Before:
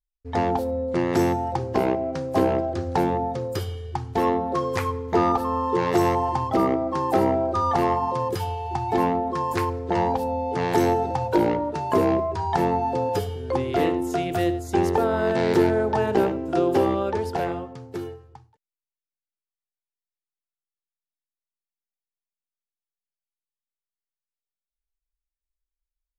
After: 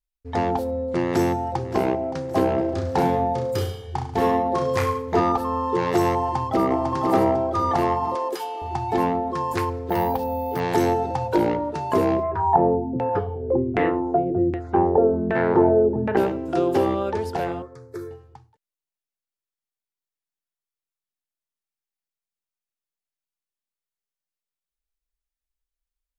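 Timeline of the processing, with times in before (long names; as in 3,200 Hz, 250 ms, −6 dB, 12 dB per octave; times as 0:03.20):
0:01.07–0:01.57: delay throw 570 ms, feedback 45%, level −14.5 dB
0:02.54–0:05.20: reverse bouncing-ball delay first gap 30 ms, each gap 1.1×, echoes 5
0:06.20–0:06.85: delay throw 500 ms, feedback 45%, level −4 dB
0:08.15–0:08.62: high-pass filter 310 Hz 24 dB per octave
0:09.89–0:10.60: bad sample-rate conversion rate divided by 3×, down filtered, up hold
0:12.23–0:16.17: auto-filter low-pass saw down 1.3 Hz 220–2,200 Hz
0:17.62–0:18.11: phaser with its sweep stopped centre 790 Hz, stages 6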